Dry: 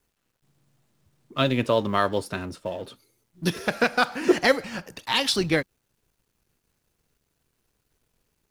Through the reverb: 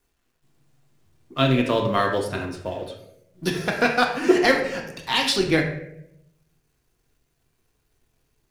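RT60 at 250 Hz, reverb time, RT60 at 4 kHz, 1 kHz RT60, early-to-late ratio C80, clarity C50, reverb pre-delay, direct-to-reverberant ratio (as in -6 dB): 1.0 s, 0.75 s, 0.50 s, 0.60 s, 9.5 dB, 6.5 dB, 3 ms, 1.0 dB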